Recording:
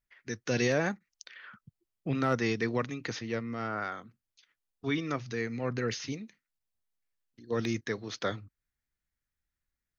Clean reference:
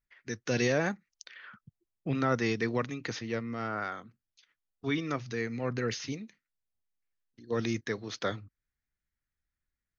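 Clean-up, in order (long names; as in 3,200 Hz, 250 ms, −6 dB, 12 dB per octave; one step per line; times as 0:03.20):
clipped peaks rebuilt −17.5 dBFS
repair the gap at 0:00.99/0:06.59, 11 ms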